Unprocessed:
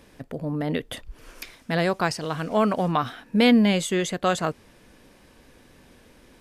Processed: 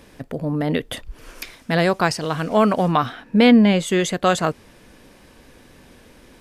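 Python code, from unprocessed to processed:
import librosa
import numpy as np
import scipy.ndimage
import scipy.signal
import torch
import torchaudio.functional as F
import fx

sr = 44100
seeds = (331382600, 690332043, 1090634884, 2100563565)

y = fx.high_shelf(x, sr, hz=fx.line((3.05, 6500.0), (3.86, 3600.0)), db=-10.0, at=(3.05, 3.86), fade=0.02)
y = F.gain(torch.from_numpy(y), 5.0).numpy()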